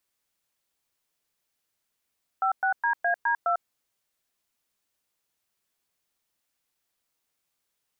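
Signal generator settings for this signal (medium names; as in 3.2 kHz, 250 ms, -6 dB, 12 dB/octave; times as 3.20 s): DTMF "56DAD2", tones 98 ms, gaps 110 ms, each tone -24 dBFS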